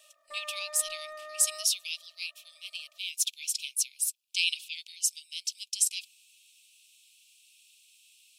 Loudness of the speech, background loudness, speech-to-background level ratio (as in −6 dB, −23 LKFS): −30.5 LKFS, −44.5 LKFS, 14.0 dB